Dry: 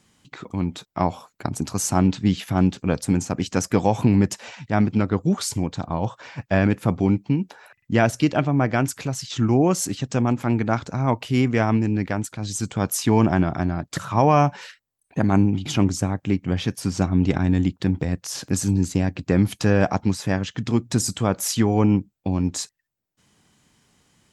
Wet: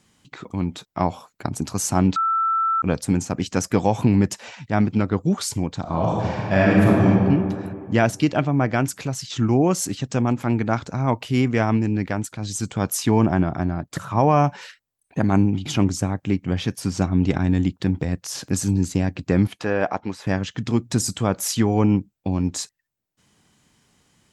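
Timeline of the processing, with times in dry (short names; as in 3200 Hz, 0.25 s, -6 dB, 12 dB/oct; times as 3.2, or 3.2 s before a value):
2.16–2.82 bleep 1330 Hz -17.5 dBFS
5.81–7.07 reverb throw, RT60 2.2 s, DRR -4.5 dB
13.11–14.44 bell 4400 Hz -5 dB 2.4 oct
19.47–20.27 tone controls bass -13 dB, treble -12 dB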